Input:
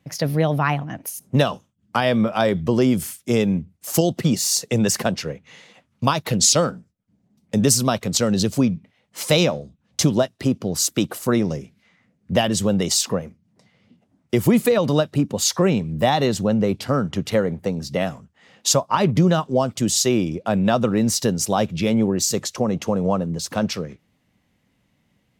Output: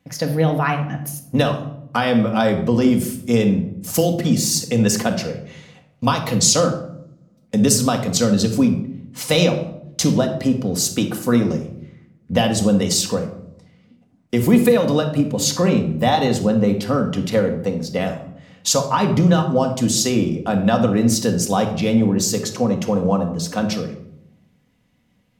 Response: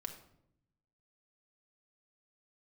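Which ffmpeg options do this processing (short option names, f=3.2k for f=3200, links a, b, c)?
-filter_complex "[1:a]atrim=start_sample=2205[a];[0:a][a]afir=irnorm=-1:irlink=0,volume=3.5dB"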